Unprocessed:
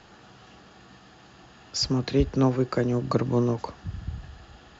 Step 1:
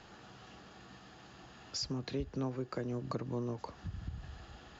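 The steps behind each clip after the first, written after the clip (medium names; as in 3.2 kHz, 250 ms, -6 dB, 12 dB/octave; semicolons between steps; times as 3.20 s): compression 2.5:1, threshold -36 dBFS, peak gain reduction 13 dB; trim -3.5 dB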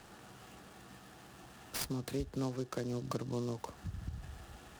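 delay time shaken by noise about 4.6 kHz, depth 0.043 ms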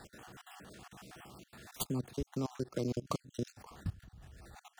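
random holes in the spectrogram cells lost 37%; level held to a coarse grid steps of 20 dB; trim +6.5 dB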